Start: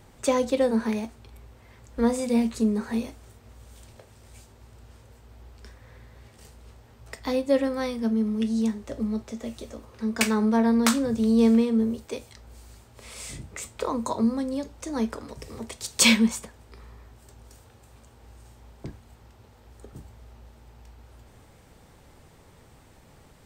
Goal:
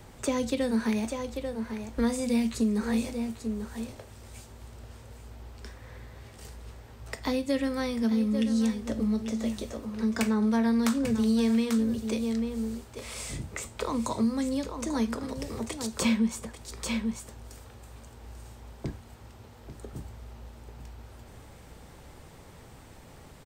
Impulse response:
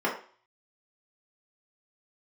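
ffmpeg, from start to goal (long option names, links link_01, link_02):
-filter_complex "[0:a]aecho=1:1:841:0.237,acrossover=split=240|1500[link_01][link_02][link_03];[link_01]acompressor=threshold=-30dB:ratio=4[link_04];[link_02]acompressor=threshold=-36dB:ratio=4[link_05];[link_03]acompressor=threshold=-40dB:ratio=4[link_06];[link_04][link_05][link_06]amix=inputs=3:normalize=0,volume=3.5dB"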